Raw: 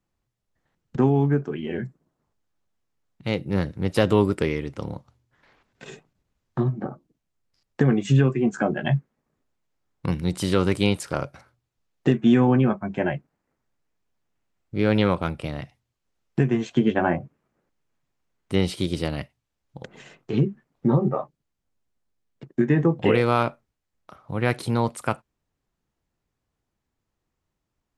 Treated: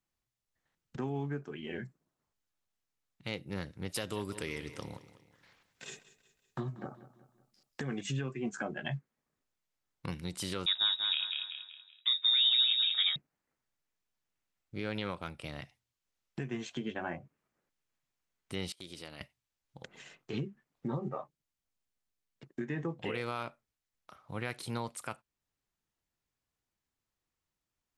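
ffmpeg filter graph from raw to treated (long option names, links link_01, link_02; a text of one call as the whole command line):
ffmpeg -i in.wav -filter_complex "[0:a]asettb=1/sr,asplit=3[link_01][link_02][link_03];[link_01]atrim=end=3.894[link_04];[link_02]atrim=start=3.89:end=8.01,asetpts=PTS-STARTPTS,afade=type=in:duration=0.004:curve=qsin,afade=type=out:start_time=4.116:duration=0.004:curve=qsin,highshelf=frequency=5200:gain=9,aecho=1:1:187|374|561|748:0.15|0.0658|0.029|0.0127,atrim=end_sample=181692[link_05];[link_03]atrim=start=8.006[link_06];[link_04][link_05]acrossfade=duration=0.004:curve1=hsin:curve2=qsin[link_07];[link_07][link_06]acrossfade=duration=0.004:curve1=qsin:curve2=hsin,asettb=1/sr,asplit=3[link_08][link_09][link_10];[link_08]atrim=end=10.664[link_11];[link_09]atrim=start=10.66:end=13.16,asetpts=PTS-STARTPTS,afade=type=in:duration=0.004:curve=qsin,afade=type=out:start_time=2.496:duration=0.004:curve=qsin,lowpass=frequency=3300:width_type=q:width=0.5098,lowpass=frequency=3300:width_type=q:width=0.6013,lowpass=frequency=3300:width_type=q:width=0.9,lowpass=frequency=3300:width_type=q:width=2.563,afreqshift=-3900,aecho=1:1:190|380|570|760|950:0.501|0.195|0.0762|0.0297|0.0116,atrim=end_sample=110250[link_12];[link_10]atrim=start=13.156[link_13];[link_11][link_12]acrossfade=duration=0.004:curve1=hsin:curve2=qsin[link_14];[link_14][link_13]acrossfade=duration=0.004:curve1=qsin:curve2=hsin,asettb=1/sr,asplit=3[link_15][link_16][link_17];[link_15]atrim=end=18.724[link_18];[link_16]atrim=start=18.72:end=19.21,asetpts=PTS-STARTPTS,afade=type=in:duration=0.004:curve=qsin,afade=type=out:start_time=0.486:duration=0.004:curve=qsin,agate=range=-21dB:threshold=-34dB:ratio=16:release=100:detection=peak,lowshelf=frequency=170:gain=-9,acompressor=threshold=-39dB:ratio=2:attack=3.2:release=140:knee=1:detection=peak[link_19];[link_17]atrim=start=19.206[link_20];[link_18][link_19]acrossfade=duration=0.004:curve1=hsin:curve2=qsin[link_21];[link_21][link_20]acrossfade=duration=0.004:curve1=qsin:curve2=hsin,alimiter=limit=-15dB:level=0:latency=1:release=343,tiltshelf=frequency=1200:gain=-5,volume=-7.5dB" out.wav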